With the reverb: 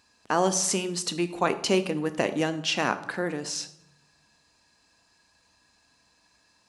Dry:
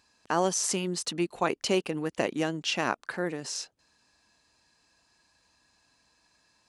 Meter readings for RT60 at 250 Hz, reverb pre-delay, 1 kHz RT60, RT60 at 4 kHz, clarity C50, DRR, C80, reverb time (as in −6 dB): 1.0 s, 4 ms, 0.75 s, 0.55 s, 14.0 dB, 10.0 dB, 16.5 dB, 0.80 s